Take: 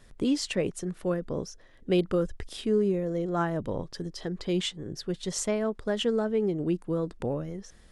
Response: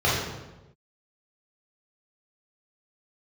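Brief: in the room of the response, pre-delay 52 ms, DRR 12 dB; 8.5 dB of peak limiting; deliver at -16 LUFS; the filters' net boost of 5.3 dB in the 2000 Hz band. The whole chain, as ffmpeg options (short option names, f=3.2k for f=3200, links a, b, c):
-filter_complex "[0:a]equalizer=f=2k:t=o:g=7,alimiter=limit=-23.5dB:level=0:latency=1,asplit=2[a][b];[1:a]atrim=start_sample=2205,adelay=52[c];[b][c]afir=irnorm=-1:irlink=0,volume=-29.5dB[d];[a][d]amix=inputs=2:normalize=0,volume=17dB"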